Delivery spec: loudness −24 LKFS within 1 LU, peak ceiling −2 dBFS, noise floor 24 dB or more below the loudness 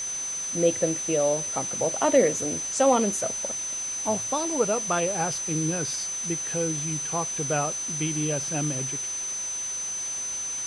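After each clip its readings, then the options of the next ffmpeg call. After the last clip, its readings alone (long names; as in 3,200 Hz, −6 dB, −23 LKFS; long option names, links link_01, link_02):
interfering tone 6,100 Hz; level of the tone −29 dBFS; background noise floor −32 dBFS; target noise floor −50 dBFS; integrated loudness −25.5 LKFS; sample peak −8.0 dBFS; target loudness −24.0 LKFS
→ -af "bandreject=frequency=6100:width=30"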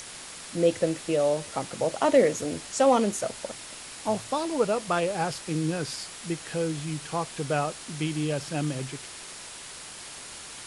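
interfering tone none found; background noise floor −42 dBFS; target noise floor −52 dBFS
→ -af "afftdn=noise_reduction=10:noise_floor=-42"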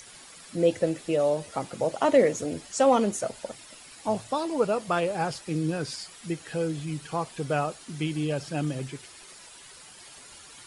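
background noise floor −49 dBFS; target noise floor −52 dBFS
→ -af "afftdn=noise_reduction=6:noise_floor=-49"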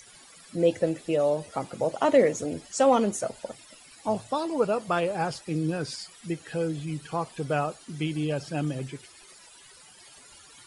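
background noise floor −52 dBFS; integrated loudness −28.0 LKFS; sample peak −9.0 dBFS; target loudness −24.0 LKFS
→ -af "volume=4dB"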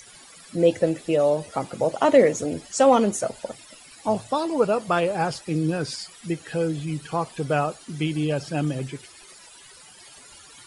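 integrated loudness −24.0 LKFS; sample peak −5.0 dBFS; background noise floor −48 dBFS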